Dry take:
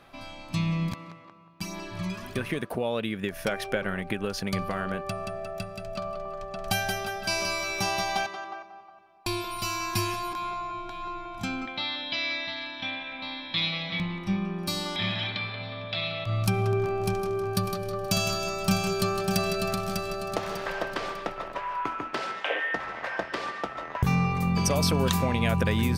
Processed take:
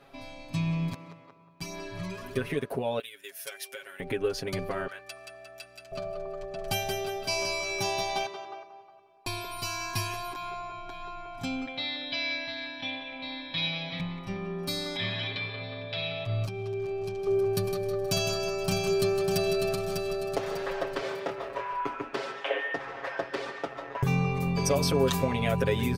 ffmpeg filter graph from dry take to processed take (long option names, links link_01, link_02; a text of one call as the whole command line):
ffmpeg -i in.wav -filter_complex "[0:a]asettb=1/sr,asplit=3[link_01][link_02][link_03];[link_01]atrim=end=2.994[link_04];[link_02]atrim=start=2.99:end=4,asetpts=PTS-STARTPTS,afade=type=in:duration=0.004:curve=qsin,afade=type=out:start_time=1.006:duration=0.004:curve=qsin,aderivative,aecho=1:1:7.3:0.86,atrim=end_sample=44541[link_05];[link_03]atrim=start=3.996[link_06];[link_04][link_05]acrossfade=duration=0.004:curve1=hsin:curve2=qsin[link_07];[link_07][link_06]acrossfade=duration=0.004:curve1=qsin:curve2=hsin,asettb=1/sr,asplit=3[link_08][link_09][link_10];[link_08]atrim=end=4.874[link_11];[link_09]atrim=start=4.87:end=5.92,asetpts=PTS-STARTPTS,afade=type=in:duration=0.004:curve=qsin,afade=type=out:start_time=1.046:duration=0.004:curve=qsin,highpass=1300,aeval=exprs='val(0)+0.00126*(sin(2*PI*60*n/s)+sin(2*PI*2*60*n/s)/2+sin(2*PI*3*60*n/s)/3+sin(2*PI*4*60*n/s)/4+sin(2*PI*5*60*n/s)/5)':channel_layout=same[link_12];[link_10]atrim=start=5.916[link_13];[link_11][link_12]acrossfade=duration=0.004:curve1=hsin:curve2=qsin[link_14];[link_14][link_13]acrossfade=duration=0.004:curve1=qsin:curve2=hsin,asettb=1/sr,asplit=3[link_15][link_16][link_17];[link_15]atrim=end=16.454[link_18];[link_16]atrim=start=16.45:end=17.27,asetpts=PTS-STARTPTS,afade=type=in:duration=0.004:curve=qsin,afade=type=out:start_time=0.816:duration=0.004:curve=qsin,highshelf=frequency=8000:gain=-10.5,acrossover=split=2500|5700[link_19][link_20][link_21];[link_19]acompressor=threshold=-34dB:ratio=4[link_22];[link_20]acompressor=threshold=-45dB:ratio=4[link_23];[link_21]acompressor=threshold=-56dB:ratio=4[link_24];[link_22][link_23][link_24]amix=inputs=3:normalize=0[link_25];[link_17]atrim=start=17.266[link_26];[link_18][link_25]acrossfade=duration=0.004:curve1=hsin:curve2=qsin[link_27];[link_27][link_26]acrossfade=duration=0.004:curve1=qsin:curve2=hsin,asettb=1/sr,asplit=3[link_28][link_29][link_30];[link_28]atrim=end=21.014[link_31];[link_29]atrim=start=21.01:end=21.73,asetpts=PTS-STARTPTS,afade=type=in:duration=0.004:curve=qsin,afade=type=out:start_time=0.716:duration=0.004:curve=qsin,highpass=frequency=50:width=0.5412,highpass=frequency=50:width=1.3066,asubboost=boost=9.5:cutoff=100,asplit=2[link_32][link_33];[link_33]adelay=26,volume=-4.5dB[link_34];[link_32][link_34]amix=inputs=2:normalize=0,atrim=end_sample=31752[link_35];[link_30]atrim=start=21.726[link_36];[link_31][link_35]acrossfade=duration=0.004:curve1=hsin:curve2=qsin[link_37];[link_37][link_36]acrossfade=duration=0.004:curve1=qsin:curve2=hsin,equalizer=frequency=440:width=2:gain=7,aecho=1:1:7.3:1,volume=-6dB" out.wav